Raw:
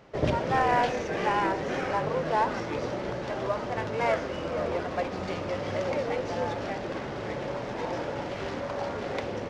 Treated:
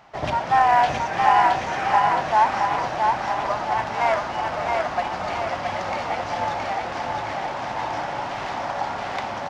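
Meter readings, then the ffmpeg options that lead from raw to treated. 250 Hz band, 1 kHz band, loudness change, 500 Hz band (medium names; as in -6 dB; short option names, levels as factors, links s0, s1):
-2.5 dB, +10.5 dB, +7.0 dB, +1.0 dB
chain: -filter_complex "[0:a]lowshelf=f=610:t=q:w=3:g=-7,asplit=2[s0][s1];[s1]aecho=0:1:670|1340|2010|2680|3350|4020|4690:0.708|0.382|0.206|0.111|0.0602|0.0325|0.0176[s2];[s0][s2]amix=inputs=2:normalize=0,volume=1.58"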